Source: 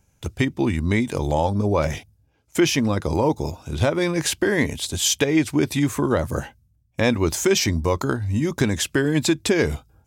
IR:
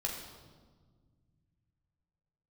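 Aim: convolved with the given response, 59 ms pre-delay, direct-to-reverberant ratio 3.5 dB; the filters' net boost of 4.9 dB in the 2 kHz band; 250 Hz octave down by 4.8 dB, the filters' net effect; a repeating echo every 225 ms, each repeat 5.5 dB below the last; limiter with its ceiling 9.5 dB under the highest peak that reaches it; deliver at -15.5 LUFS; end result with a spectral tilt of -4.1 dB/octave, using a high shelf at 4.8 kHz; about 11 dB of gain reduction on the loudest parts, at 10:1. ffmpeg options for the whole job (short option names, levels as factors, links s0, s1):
-filter_complex "[0:a]equalizer=f=250:t=o:g=-7,equalizer=f=2000:t=o:g=5,highshelf=f=4800:g=6,acompressor=threshold=0.0501:ratio=10,alimiter=limit=0.1:level=0:latency=1,aecho=1:1:225|450|675|900|1125|1350|1575:0.531|0.281|0.149|0.079|0.0419|0.0222|0.0118,asplit=2[s0][s1];[1:a]atrim=start_sample=2205,adelay=59[s2];[s1][s2]afir=irnorm=-1:irlink=0,volume=0.501[s3];[s0][s3]amix=inputs=2:normalize=0,volume=4.47"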